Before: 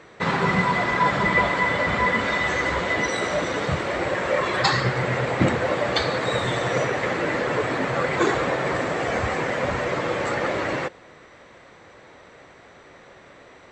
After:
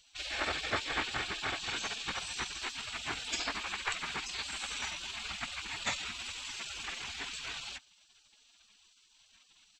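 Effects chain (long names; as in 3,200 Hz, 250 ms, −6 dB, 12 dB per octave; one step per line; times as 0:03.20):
tempo change 1.4×
gate on every frequency bin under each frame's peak −20 dB weak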